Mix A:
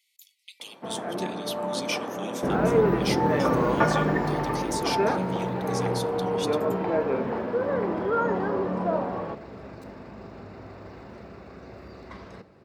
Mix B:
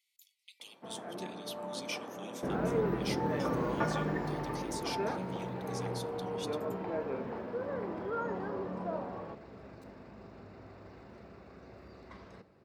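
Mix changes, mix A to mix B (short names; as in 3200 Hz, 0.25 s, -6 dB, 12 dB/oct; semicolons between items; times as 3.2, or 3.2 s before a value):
speech -9.0 dB; first sound -11.0 dB; second sound -8.5 dB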